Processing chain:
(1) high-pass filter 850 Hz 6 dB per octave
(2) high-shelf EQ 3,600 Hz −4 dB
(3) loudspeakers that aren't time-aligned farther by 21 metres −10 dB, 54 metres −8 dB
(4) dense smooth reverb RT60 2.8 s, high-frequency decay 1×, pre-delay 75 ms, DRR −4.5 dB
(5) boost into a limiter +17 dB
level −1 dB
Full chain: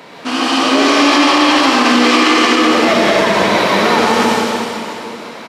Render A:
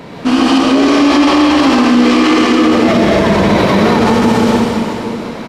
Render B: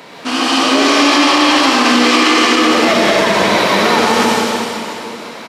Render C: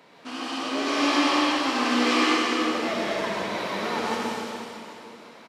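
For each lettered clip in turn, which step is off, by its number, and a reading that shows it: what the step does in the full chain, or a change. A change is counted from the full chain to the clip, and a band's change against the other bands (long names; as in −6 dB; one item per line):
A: 1, 125 Hz band +13.0 dB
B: 2, 8 kHz band +3.0 dB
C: 5, change in crest factor +6.0 dB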